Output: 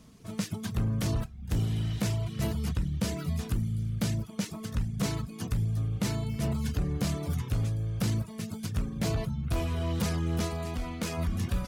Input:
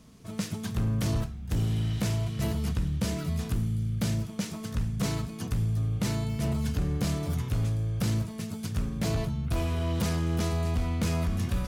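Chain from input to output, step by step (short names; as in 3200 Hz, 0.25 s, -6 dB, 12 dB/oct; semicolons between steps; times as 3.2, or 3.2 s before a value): reverb removal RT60 0.52 s; 10.45–11.17 bell 100 Hz -6 dB -> -14 dB 1.4 oct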